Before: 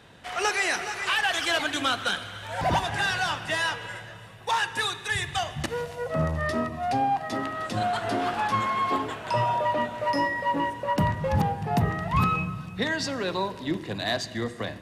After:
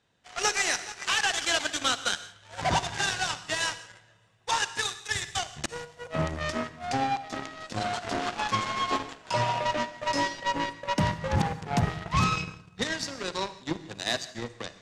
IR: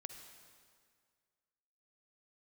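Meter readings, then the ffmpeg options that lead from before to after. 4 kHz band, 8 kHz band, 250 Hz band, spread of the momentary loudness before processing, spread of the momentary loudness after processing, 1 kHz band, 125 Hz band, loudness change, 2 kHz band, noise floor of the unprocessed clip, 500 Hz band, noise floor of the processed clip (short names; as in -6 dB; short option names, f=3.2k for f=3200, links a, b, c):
0.0 dB, +5.0 dB, -3.5 dB, 7 LU, 10 LU, -3.5 dB, -3.0 dB, -2.0 dB, -3.0 dB, -42 dBFS, -4.0 dB, -57 dBFS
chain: -filter_complex "[0:a]aeval=exprs='0.224*(cos(1*acos(clip(val(0)/0.224,-1,1)))-cos(1*PI/2))+0.0282*(cos(7*acos(clip(val(0)/0.224,-1,1)))-cos(7*PI/2))':c=same,lowpass=f=6.9k:t=q:w=1.7,asplit=2[a][b];[1:a]atrim=start_sample=2205,afade=t=out:st=0.24:d=0.01,atrim=end_sample=11025,highshelf=f=5.7k:g=8[c];[b][c]afir=irnorm=-1:irlink=0,volume=4dB[d];[a][d]amix=inputs=2:normalize=0,volume=-7.5dB"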